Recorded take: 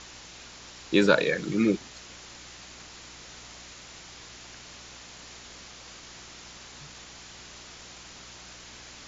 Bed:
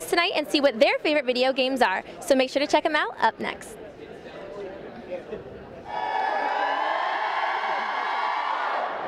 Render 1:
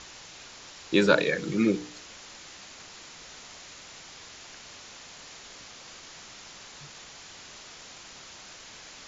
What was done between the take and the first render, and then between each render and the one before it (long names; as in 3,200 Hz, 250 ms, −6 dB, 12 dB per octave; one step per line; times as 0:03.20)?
hum removal 60 Hz, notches 8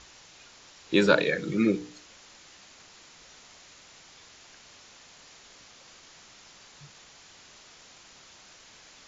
noise reduction from a noise print 6 dB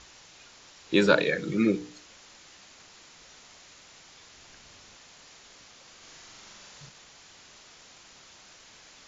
0:04.35–0:04.96: low-shelf EQ 180 Hz +8 dB
0:05.96–0:06.89: flutter between parallel walls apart 7.6 metres, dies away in 0.84 s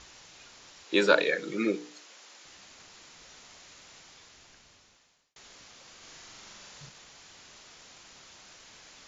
0:00.84–0:02.45: high-pass filter 340 Hz
0:03.95–0:05.36: fade out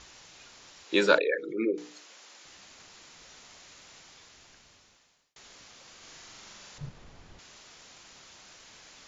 0:01.18–0:01.78: spectral envelope exaggerated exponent 2
0:06.78–0:07.39: spectral tilt −4 dB per octave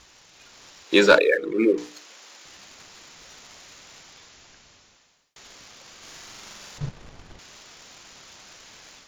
leveller curve on the samples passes 1
automatic gain control gain up to 6.5 dB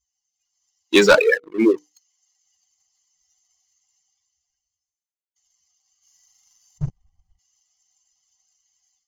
spectral dynamics exaggerated over time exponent 2
leveller curve on the samples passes 2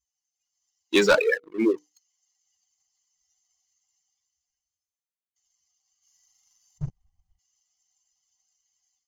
level −6 dB